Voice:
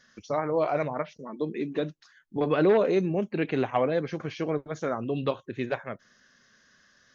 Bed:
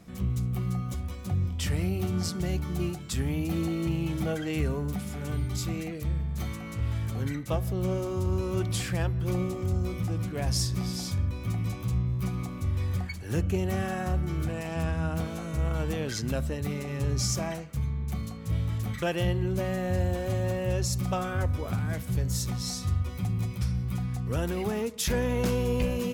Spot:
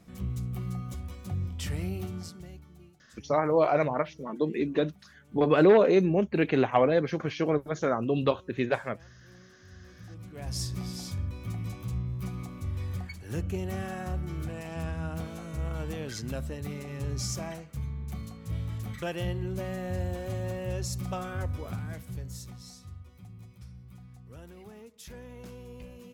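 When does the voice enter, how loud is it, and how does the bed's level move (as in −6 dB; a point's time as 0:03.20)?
3.00 s, +2.5 dB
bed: 0:01.96 −4.5 dB
0:02.92 −26 dB
0:09.62 −26 dB
0:10.63 −5 dB
0:21.66 −5 dB
0:23.02 −18.5 dB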